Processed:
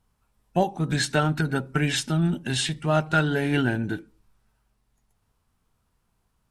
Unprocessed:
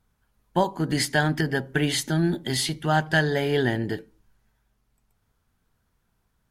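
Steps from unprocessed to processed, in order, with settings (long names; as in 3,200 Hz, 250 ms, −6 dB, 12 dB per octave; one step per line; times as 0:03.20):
formants moved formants −3 semitones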